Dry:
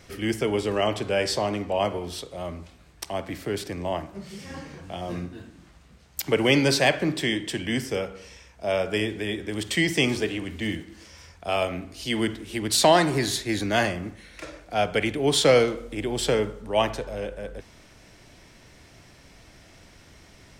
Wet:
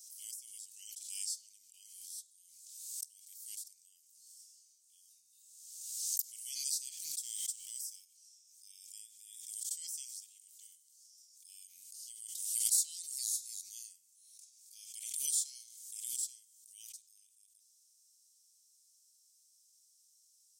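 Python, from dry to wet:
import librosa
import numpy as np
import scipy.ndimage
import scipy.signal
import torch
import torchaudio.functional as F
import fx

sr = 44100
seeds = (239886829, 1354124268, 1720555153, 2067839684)

y = fx.leveller(x, sr, passes=1, at=(6.97, 8.05))
y = scipy.signal.sosfilt(scipy.signal.cheby2(4, 70, 1600.0, 'highpass', fs=sr, output='sos'), y)
y = fx.pre_swell(y, sr, db_per_s=41.0)
y = F.gain(torch.from_numpy(y), -2.5).numpy()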